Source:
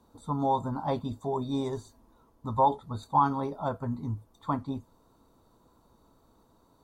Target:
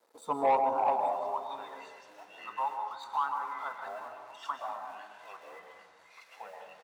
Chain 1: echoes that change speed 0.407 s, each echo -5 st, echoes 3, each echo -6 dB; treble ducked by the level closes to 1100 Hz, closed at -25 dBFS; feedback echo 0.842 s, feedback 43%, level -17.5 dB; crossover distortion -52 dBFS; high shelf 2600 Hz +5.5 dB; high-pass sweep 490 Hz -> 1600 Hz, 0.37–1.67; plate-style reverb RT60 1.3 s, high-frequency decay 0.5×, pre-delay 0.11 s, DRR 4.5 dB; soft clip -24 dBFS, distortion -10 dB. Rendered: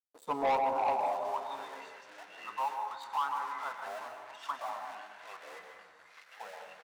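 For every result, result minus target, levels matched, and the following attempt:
crossover distortion: distortion +10 dB; soft clip: distortion +6 dB
echoes that change speed 0.407 s, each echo -5 st, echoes 3, each echo -6 dB; treble ducked by the level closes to 1100 Hz, closed at -25 dBFS; feedback echo 0.842 s, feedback 43%, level -17.5 dB; crossover distortion -62.5 dBFS; high shelf 2600 Hz +5.5 dB; high-pass sweep 490 Hz -> 1600 Hz, 0.37–1.67; plate-style reverb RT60 1.3 s, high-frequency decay 0.5×, pre-delay 0.11 s, DRR 4.5 dB; soft clip -24 dBFS, distortion -10 dB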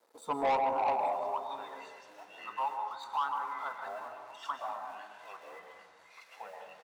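soft clip: distortion +6 dB
echoes that change speed 0.407 s, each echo -5 st, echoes 3, each echo -6 dB; treble ducked by the level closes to 1100 Hz, closed at -25 dBFS; feedback echo 0.842 s, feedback 43%, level -17.5 dB; crossover distortion -62.5 dBFS; high shelf 2600 Hz +5.5 dB; high-pass sweep 490 Hz -> 1600 Hz, 0.37–1.67; plate-style reverb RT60 1.3 s, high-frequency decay 0.5×, pre-delay 0.11 s, DRR 4.5 dB; soft clip -18 dBFS, distortion -16 dB

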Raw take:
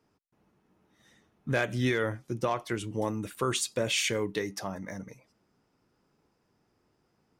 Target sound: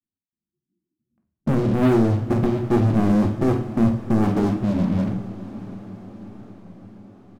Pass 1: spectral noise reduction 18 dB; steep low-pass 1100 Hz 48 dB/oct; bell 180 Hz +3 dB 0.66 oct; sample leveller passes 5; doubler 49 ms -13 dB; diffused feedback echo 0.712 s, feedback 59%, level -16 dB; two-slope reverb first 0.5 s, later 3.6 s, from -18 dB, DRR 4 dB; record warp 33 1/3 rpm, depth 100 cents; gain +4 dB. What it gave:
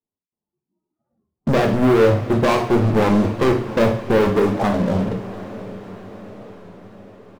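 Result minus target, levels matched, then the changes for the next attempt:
1000 Hz band +4.5 dB
change: steep low-pass 350 Hz 48 dB/oct

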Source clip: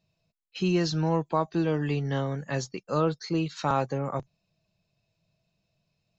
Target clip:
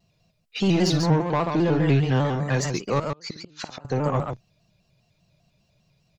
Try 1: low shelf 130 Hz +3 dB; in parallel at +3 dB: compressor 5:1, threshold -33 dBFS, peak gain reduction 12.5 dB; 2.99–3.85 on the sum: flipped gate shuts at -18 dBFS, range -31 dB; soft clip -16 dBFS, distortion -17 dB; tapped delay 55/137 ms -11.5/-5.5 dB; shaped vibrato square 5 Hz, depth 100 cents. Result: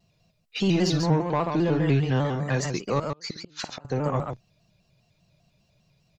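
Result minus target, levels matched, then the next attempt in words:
compressor: peak gain reduction +8.5 dB
low shelf 130 Hz +3 dB; in parallel at +3 dB: compressor 5:1, threshold -22.5 dBFS, peak gain reduction 4.5 dB; 2.99–3.85 on the sum: flipped gate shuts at -18 dBFS, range -31 dB; soft clip -16 dBFS, distortion -13 dB; tapped delay 55/137 ms -11.5/-5.5 dB; shaped vibrato square 5 Hz, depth 100 cents

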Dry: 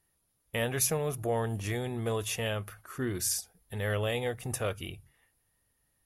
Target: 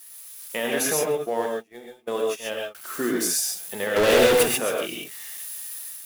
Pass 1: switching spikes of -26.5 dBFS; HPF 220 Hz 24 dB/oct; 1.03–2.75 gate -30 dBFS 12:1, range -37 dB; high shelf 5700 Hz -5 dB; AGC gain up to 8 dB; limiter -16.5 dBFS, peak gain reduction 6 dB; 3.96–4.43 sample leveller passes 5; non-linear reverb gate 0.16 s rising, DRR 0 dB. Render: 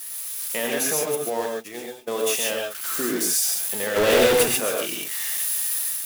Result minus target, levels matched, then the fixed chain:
switching spikes: distortion +10 dB
switching spikes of -37 dBFS; HPF 220 Hz 24 dB/oct; 1.03–2.75 gate -30 dBFS 12:1, range -37 dB; high shelf 5700 Hz -5 dB; AGC gain up to 8 dB; limiter -16.5 dBFS, peak gain reduction 5 dB; 3.96–4.43 sample leveller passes 5; non-linear reverb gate 0.16 s rising, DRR 0 dB

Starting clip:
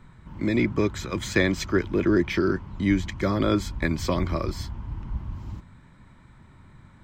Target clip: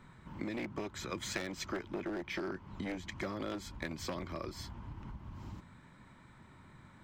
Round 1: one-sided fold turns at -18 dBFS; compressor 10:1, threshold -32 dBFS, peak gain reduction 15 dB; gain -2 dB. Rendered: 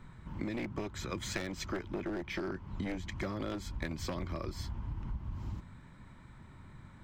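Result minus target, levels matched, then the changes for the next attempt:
125 Hz band +4.0 dB
add after compressor: low shelf 110 Hz -12 dB

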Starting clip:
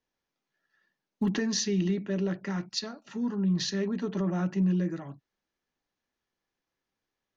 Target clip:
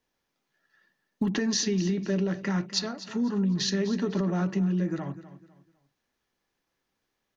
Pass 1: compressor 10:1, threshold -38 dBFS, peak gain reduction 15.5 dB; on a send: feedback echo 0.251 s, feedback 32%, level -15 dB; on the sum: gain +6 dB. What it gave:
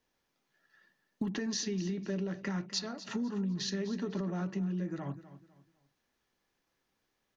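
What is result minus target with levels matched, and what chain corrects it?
compressor: peak gain reduction +8 dB
compressor 10:1, threshold -29 dBFS, peak gain reduction 7.5 dB; on a send: feedback echo 0.251 s, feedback 32%, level -15 dB; on the sum: gain +6 dB

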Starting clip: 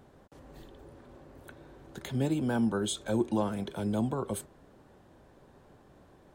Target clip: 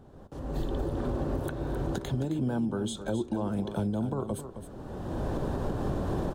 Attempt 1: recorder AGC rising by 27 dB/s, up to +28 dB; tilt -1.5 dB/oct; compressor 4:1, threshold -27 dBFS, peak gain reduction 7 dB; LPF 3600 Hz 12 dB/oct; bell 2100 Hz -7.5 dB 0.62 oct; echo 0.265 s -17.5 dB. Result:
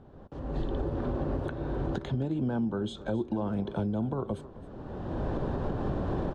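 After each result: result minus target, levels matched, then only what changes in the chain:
echo-to-direct -7 dB; 4000 Hz band -3.0 dB
change: echo 0.265 s -10.5 dB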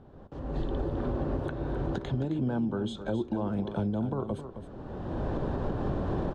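4000 Hz band -3.0 dB
remove: LPF 3600 Hz 12 dB/oct

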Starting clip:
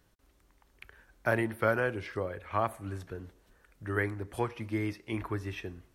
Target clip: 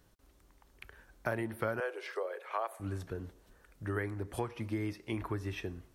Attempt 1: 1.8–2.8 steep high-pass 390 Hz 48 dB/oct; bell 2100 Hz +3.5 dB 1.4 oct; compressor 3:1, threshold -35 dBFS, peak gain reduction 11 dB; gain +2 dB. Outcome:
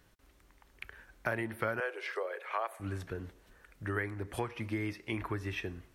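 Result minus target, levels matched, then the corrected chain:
2000 Hz band +3.5 dB
1.8–2.8 steep high-pass 390 Hz 48 dB/oct; bell 2100 Hz -3 dB 1.4 oct; compressor 3:1, threshold -35 dBFS, peak gain reduction 9.5 dB; gain +2 dB

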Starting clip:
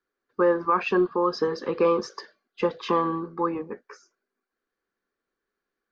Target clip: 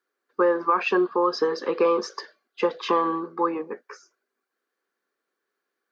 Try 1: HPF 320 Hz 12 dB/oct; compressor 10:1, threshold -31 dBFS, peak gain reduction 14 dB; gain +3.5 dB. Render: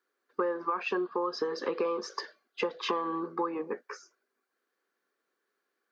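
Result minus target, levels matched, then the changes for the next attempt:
compressor: peak gain reduction +10.5 dB
change: compressor 10:1, threshold -19 dBFS, peak gain reduction 3 dB

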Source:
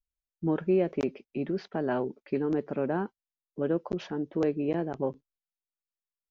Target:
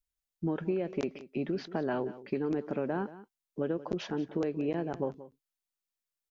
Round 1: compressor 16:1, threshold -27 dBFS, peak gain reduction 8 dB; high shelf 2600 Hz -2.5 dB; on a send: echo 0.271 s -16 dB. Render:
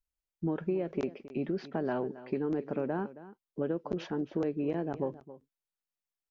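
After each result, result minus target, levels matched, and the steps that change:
echo 91 ms late; 4000 Hz band -4.5 dB
change: echo 0.18 s -16 dB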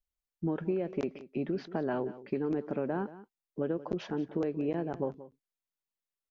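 4000 Hz band -4.5 dB
change: high shelf 2600 Hz +4.5 dB

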